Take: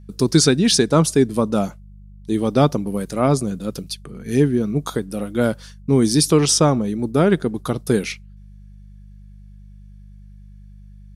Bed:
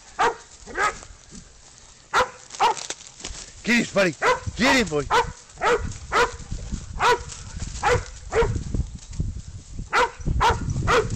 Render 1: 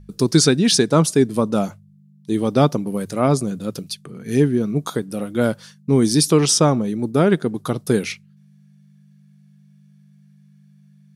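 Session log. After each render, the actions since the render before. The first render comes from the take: de-hum 50 Hz, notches 2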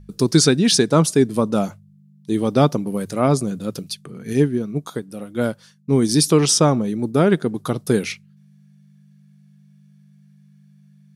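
4.33–6.09 s: upward expansion, over -25 dBFS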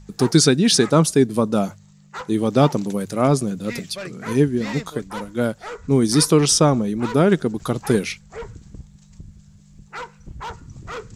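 add bed -13.5 dB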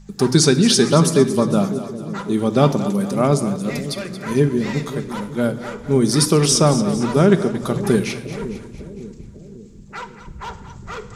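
on a send: two-band feedback delay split 500 Hz, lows 550 ms, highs 227 ms, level -12.5 dB; on the sum: simulated room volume 3400 m³, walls furnished, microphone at 1.2 m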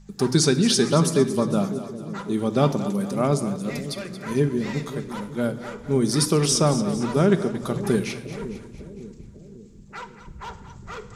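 trim -5 dB

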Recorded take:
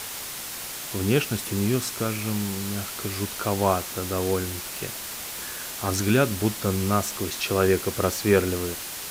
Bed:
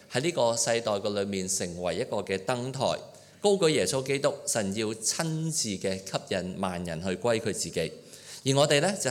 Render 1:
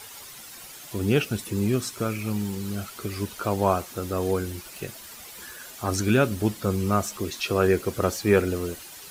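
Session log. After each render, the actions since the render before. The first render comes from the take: noise reduction 11 dB, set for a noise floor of -35 dBFS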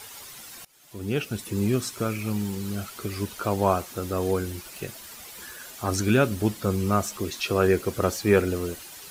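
0.65–1.62 s: fade in, from -23 dB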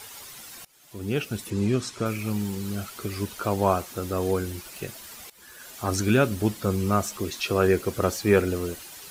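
1.50–2.06 s: low-pass 7.2 kHz; 5.30–5.78 s: fade in, from -17.5 dB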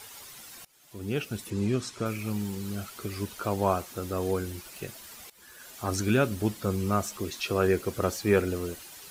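trim -3.5 dB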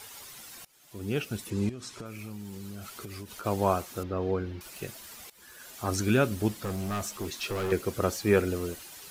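1.69–3.46 s: compression 12:1, threshold -36 dBFS; 4.03–4.61 s: distance through air 270 m; 6.48–7.72 s: overload inside the chain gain 28.5 dB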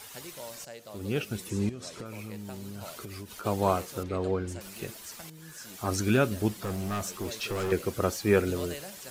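add bed -18.5 dB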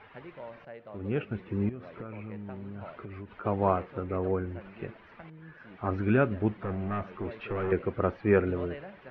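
inverse Chebyshev low-pass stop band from 7.1 kHz, stop band 60 dB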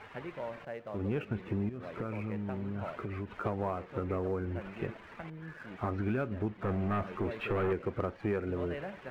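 compression 8:1, threshold -32 dBFS, peak gain reduction 14.5 dB; waveshaping leveller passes 1

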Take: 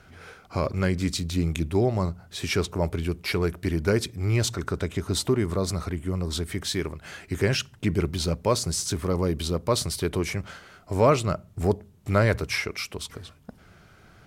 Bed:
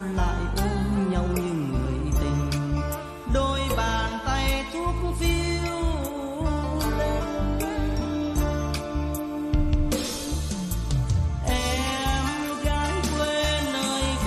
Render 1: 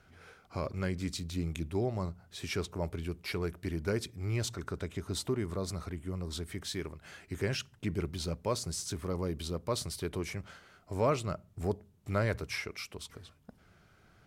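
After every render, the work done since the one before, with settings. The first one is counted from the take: trim -9.5 dB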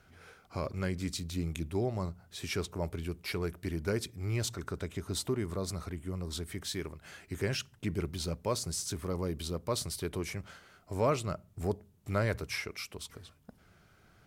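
treble shelf 8.9 kHz +5.5 dB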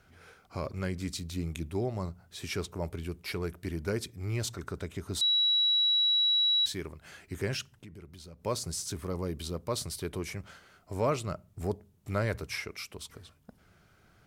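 5.21–6.66 s: bleep 3.9 kHz -22.5 dBFS; 7.72–8.44 s: compression 3:1, threshold -50 dBFS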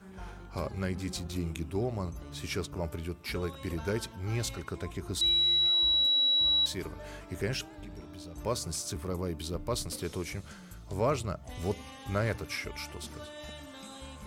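add bed -20.5 dB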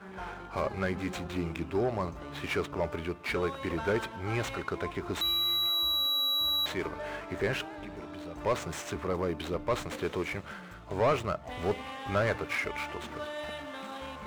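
median filter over 9 samples; overdrive pedal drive 17 dB, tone 2.9 kHz, clips at -17.5 dBFS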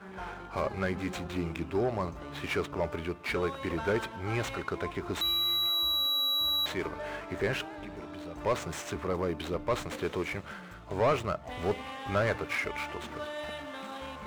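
no audible change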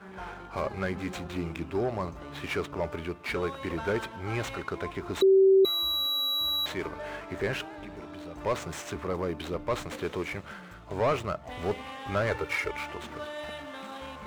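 5.22–5.65 s: bleep 385 Hz -15.5 dBFS; 12.31–12.71 s: comb 2.2 ms, depth 73%

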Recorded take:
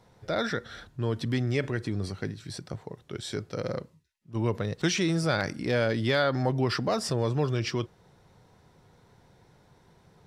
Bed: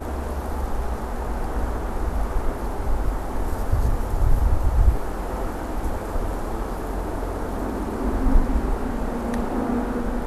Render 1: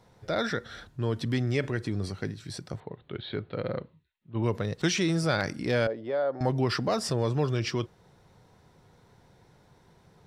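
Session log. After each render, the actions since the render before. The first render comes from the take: 2.80–4.43 s: steep low-pass 4.1 kHz 72 dB/octave; 5.87–6.41 s: band-pass filter 570 Hz, Q 1.9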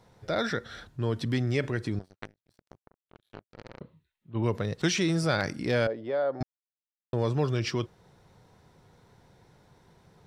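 1.99–3.81 s: power-law waveshaper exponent 3; 6.43–7.13 s: mute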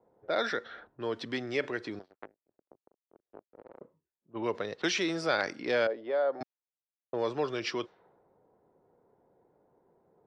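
level-controlled noise filter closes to 520 Hz, open at -25.5 dBFS; three-band isolator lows -22 dB, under 290 Hz, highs -21 dB, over 6 kHz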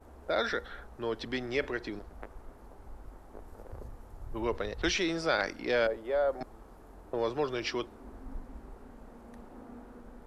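add bed -24.5 dB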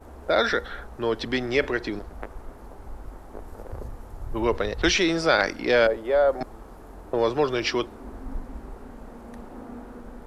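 trim +8.5 dB

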